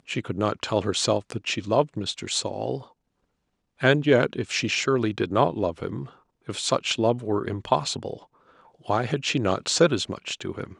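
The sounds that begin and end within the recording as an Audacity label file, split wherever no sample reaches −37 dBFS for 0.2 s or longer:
3.810000	6.070000	sound
6.480000	8.170000	sound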